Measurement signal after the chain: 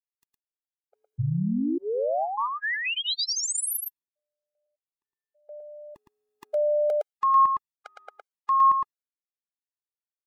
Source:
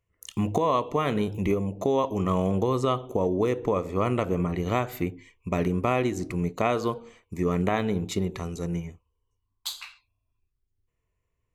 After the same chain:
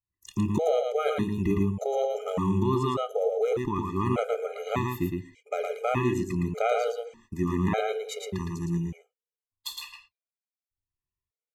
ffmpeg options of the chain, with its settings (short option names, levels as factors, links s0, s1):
-filter_complex "[0:a]agate=range=0.141:threshold=0.00355:ratio=16:detection=peak,asplit=2[s0][s1];[s1]aecho=0:1:112:0.668[s2];[s0][s2]amix=inputs=2:normalize=0,afftfilt=real='re*gt(sin(2*PI*0.84*pts/sr)*(1-2*mod(floor(b*sr/1024/410),2)),0)':imag='im*gt(sin(2*PI*0.84*pts/sr)*(1-2*mod(floor(b*sr/1024/410),2)),0)':win_size=1024:overlap=0.75"